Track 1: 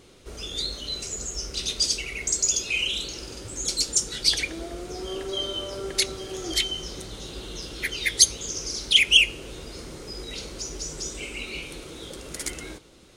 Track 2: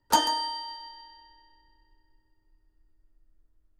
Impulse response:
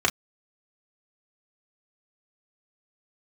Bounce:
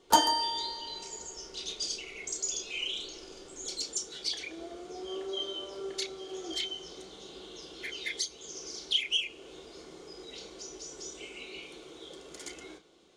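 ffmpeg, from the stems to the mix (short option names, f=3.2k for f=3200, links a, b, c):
-filter_complex "[0:a]acrossover=split=180 7800:gain=0.224 1 0.224[a][b][c];[a][b][c]amix=inputs=3:normalize=0,alimiter=limit=-11.5dB:level=0:latency=1:release=371,volume=-12.5dB,asplit=2[d][e];[e]volume=-12dB[f];[1:a]volume=-1.5dB,asplit=2[g][h];[h]volume=-18.5dB[i];[2:a]atrim=start_sample=2205[j];[f][i]amix=inputs=2:normalize=0[k];[k][j]afir=irnorm=-1:irlink=0[l];[d][g][l]amix=inputs=3:normalize=0"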